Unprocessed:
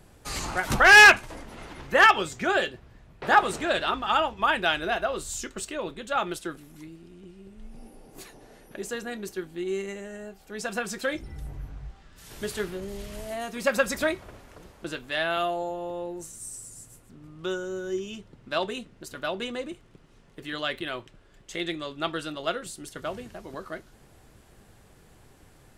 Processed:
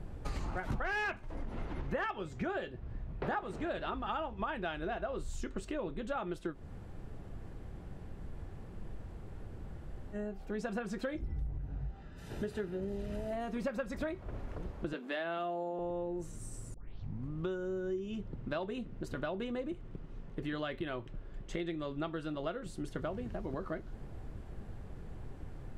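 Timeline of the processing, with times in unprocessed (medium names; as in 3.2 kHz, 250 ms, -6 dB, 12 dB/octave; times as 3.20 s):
6.53–10.15 s: room tone, crossfade 0.06 s
11.58–13.33 s: comb of notches 1.1 kHz
14.93–15.79 s: steep high-pass 170 Hz 96 dB/octave
16.74 s: tape start 0.57 s
whole clip: tilt EQ -2.5 dB/octave; compression 6:1, threshold -36 dBFS; treble shelf 4.2 kHz -8 dB; trim +1.5 dB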